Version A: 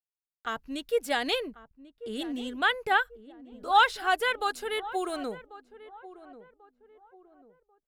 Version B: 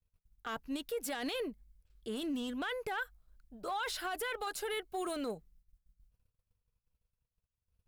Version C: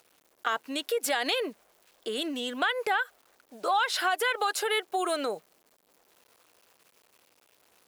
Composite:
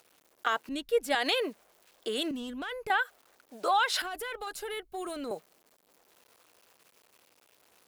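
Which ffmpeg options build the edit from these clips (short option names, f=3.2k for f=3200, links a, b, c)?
-filter_complex "[1:a]asplit=2[a][b];[2:a]asplit=4[c][d][e][f];[c]atrim=end=0.692[g];[0:a]atrim=start=0.688:end=1.152[h];[d]atrim=start=1.148:end=2.312[i];[a]atrim=start=2.308:end=2.902[j];[e]atrim=start=2.898:end=4.022[k];[b]atrim=start=4.018:end=5.312[l];[f]atrim=start=5.308[m];[g][h]acrossfade=d=0.004:c1=hsin:c2=hsin[n];[n][i]acrossfade=d=0.004:c1=hsin:c2=hsin[o];[o][j]acrossfade=d=0.004:c1=hsin:c2=hsin[p];[p][k]acrossfade=d=0.004:c1=hsin:c2=hsin[q];[q][l]acrossfade=d=0.004:c1=hsin:c2=hsin[r];[r][m]acrossfade=d=0.004:c1=hsin:c2=hsin"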